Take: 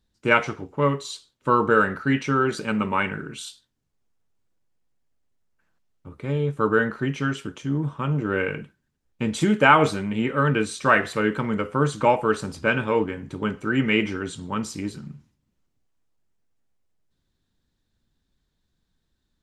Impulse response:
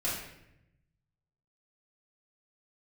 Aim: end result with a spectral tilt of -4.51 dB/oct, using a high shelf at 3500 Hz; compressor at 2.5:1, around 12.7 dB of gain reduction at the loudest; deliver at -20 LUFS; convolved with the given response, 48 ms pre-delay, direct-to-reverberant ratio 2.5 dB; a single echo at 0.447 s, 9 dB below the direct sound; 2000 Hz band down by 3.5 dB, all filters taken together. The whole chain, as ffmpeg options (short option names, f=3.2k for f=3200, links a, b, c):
-filter_complex "[0:a]equalizer=f=2k:t=o:g=-3,highshelf=f=3.5k:g=-8,acompressor=threshold=-32dB:ratio=2.5,aecho=1:1:447:0.355,asplit=2[a][b];[1:a]atrim=start_sample=2205,adelay=48[c];[b][c]afir=irnorm=-1:irlink=0,volume=-9dB[d];[a][d]amix=inputs=2:normalize=0,volume=11dB"